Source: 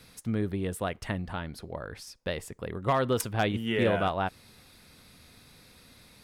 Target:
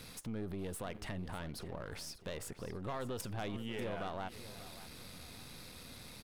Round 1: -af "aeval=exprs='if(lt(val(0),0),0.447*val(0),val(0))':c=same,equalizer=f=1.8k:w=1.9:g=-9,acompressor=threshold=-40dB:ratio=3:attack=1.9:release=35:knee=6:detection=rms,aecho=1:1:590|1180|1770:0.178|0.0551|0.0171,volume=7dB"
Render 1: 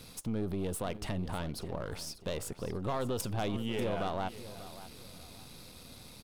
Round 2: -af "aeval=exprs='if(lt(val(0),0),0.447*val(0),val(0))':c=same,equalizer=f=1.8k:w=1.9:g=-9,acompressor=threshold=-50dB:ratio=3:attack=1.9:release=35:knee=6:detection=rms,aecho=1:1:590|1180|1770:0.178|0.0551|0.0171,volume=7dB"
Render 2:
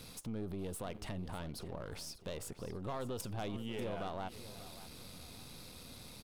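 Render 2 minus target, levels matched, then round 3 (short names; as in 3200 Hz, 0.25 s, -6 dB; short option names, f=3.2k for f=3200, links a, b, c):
2000 Hz band -3.5 dB
-af "aeval=exprs='if(lt(val(0),0),0.447*val(0),val(0))':c=same,equalizer=f=1.8k:w=1.9:g=-2.5,acompressor=threshold=-50dB:ratio=3:attack=1.9:release=35:knee=6:detection=rms,aecho=1:1:590|1180|1770:0.178|0.0551|0.0171,volume=7dB"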